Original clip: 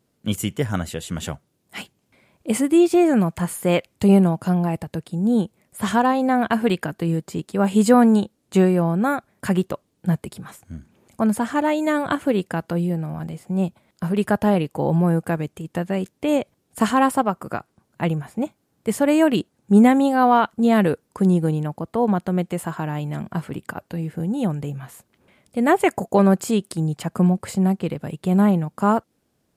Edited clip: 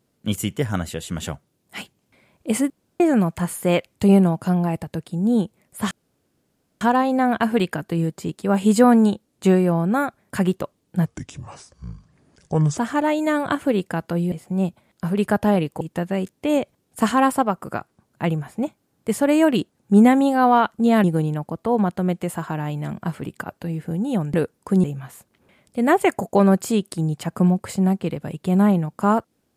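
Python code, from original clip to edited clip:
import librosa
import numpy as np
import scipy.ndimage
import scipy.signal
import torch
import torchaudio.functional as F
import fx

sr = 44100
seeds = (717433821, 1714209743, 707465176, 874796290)

y = fx.edit(x, sr, fx.room_tone_fill(start_s=2.7, length_s=0.3),
    fx.insert_room_tone(at_s=5.91, length_s=0.9),
    fx.speed_span(start_s=10.16, length_s=1.22, speed=0.71),
    fx.cut(start_s=12.92, length_s=0.39),
    fx.cut(start_s=14.8, length_s=0.8),
    fx.move(start_s=20.83, length_s=0.5, to_s=24.63), tone=tone)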